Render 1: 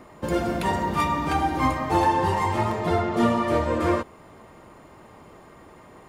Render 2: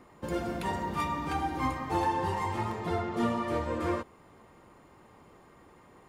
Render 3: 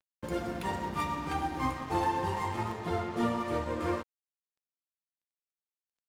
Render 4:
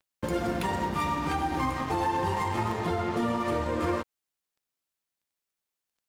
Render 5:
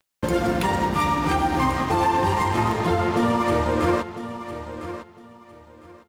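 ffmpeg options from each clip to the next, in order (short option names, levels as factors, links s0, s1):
-af "bandreject=f=630:w=12,volume=0.398"
-af "aeval=exprs='sgn(val(0))*max(abs(val(0))-0.00501,0)':c=same"
-af "alimiter=level_in=1.5:limit=0.0631:level=0:latency=1:release=108,volume=0.668,volume=2.66"
-af "aecho=1:1:1005|2010|3015:0.251|0.0553|0.0122,volume=2.24"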